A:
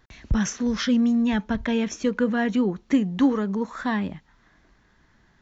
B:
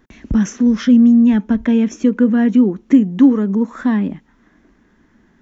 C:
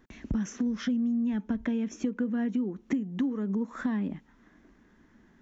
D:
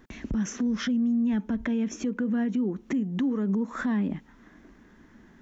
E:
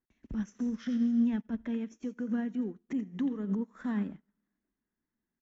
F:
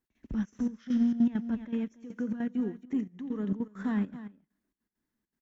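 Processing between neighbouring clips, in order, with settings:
drawn EQ curve 140 Hz 0 dB, 240 Hz +13 dB, 720 Hz +1 dB; in parallel at −2.5 dB: downward compressor, threshold −19 dBFS, peak gain reduction 14.5 dB; on the sum: parametric band 4,300 Hz −7.5 dB 0.55 octaves; level −3 dB
downward compressor 6 to 1, threshold −21 dBFS, peak gain reduction 14.5 dB; level −6 dB
brickwall limiter −26.5 dBFS, peak gain reduction 9 dB; level +6 dB
single-tap delay 86 ms −17 dB; convolution reverb RT60 1.6 s, pre-delay 50 ms, DRR 17.5 dB; expander for the loud parts 2.5 to 1, over −44 dBFS; level −1.5 dB
in parallel at −8 dB: asymmetric clip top −28.5 dBFS; on the sum: single-tap delay 282 ms −13.5 dB; gate pattern "x.xxxx.xx...xxx." 200 BPM −12 dB

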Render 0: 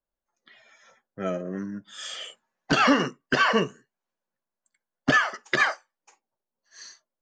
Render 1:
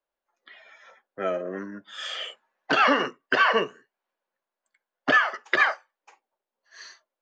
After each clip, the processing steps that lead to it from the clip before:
three-way crossover with the lows and the highs turned down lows −17 dB, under 330 Hz, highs −16 dB, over 4,000 Hz
in parallel at −0.5 dB: downward compressor, threshold −32 dBFS, peak gain reduction 15 dB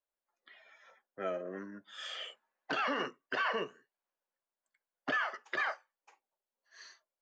brickwall limiter −15 dBFS, peak gain reduction 7 dB
level −9 dB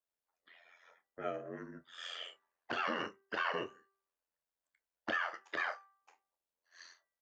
ring modulation 43 Hz
double-tracking delay 29 ms −13 dB
hum removal 391.5 Hz, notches 5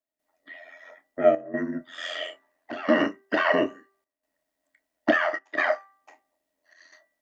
hollow resonant body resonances 280/620/1,900 Hz, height 17 dB, ringing for 45 ms
gate pattern "..xxxxxxxxxxxx" 156 BPM −12 dB
level +8.5 dB

